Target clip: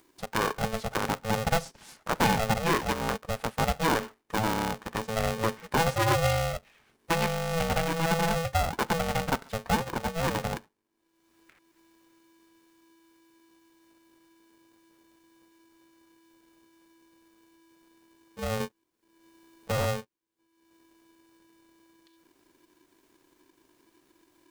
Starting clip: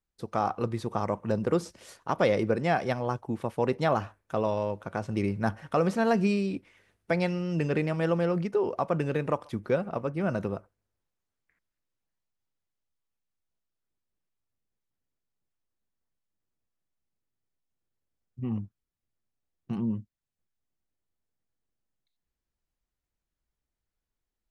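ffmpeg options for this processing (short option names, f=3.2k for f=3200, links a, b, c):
-filter_complex "[0:a]asettb=1/sr,asplit=3[a][b][c];[a]atrim=end=18.604[d];[b]atrim=start=18.6:end=19.86,asetpts=PTS-STARTPTS,afade=t=in:d=0.004:c=qsin,afade=t=out:st=1.256:d=0.004:c=qsin,aeval=exprs='0.0891*(cos(1*acos(clip(val(0)/0.0891,-1,1)))-cos(1*PI/2))+0.0282*(cos(5*acos(clip(val(0)/0.0891,-1,1)))-cos(5*PI/2))':c=same[e];[c]atrim=start=19.856[f];[d][e]acrossfade=d=0.004:c1=hsin:c2=qsin[g];[g][f]acrossfade=d=0.004:c1=qsin:c2=hsin,acompressor=mode=upward:threshold=-46dB:ratio=2.5,aeval=exprs='val(0)*sgn(sin(2*PI*330*n/s))':c=same"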